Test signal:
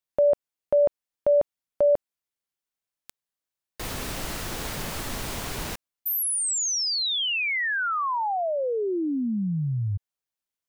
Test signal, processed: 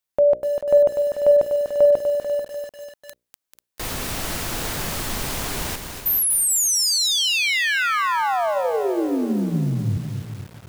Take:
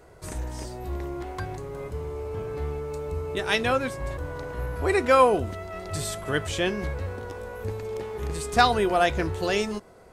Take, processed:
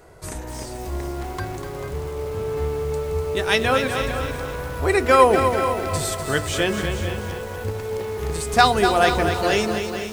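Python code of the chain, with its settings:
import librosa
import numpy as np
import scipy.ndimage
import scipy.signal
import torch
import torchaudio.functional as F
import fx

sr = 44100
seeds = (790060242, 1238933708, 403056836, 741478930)

y = fx.high_shelf(x, sr, hz=7400.0, db=3.0)
y = fx.hum_notches(y, sr, base_hz=60, count=10)
y = y + 10.0 ** (-11.0 / 20.0) * np.pad(y, (int(440 * sr / 1000.0), 0))[:len(y)]
y = fx.echo_crushed(y, sr, ms=246, feedback_pct=55, bits=7, wet_db=-7.0)
y = y * 10.0 ** (4.0 / 20.0)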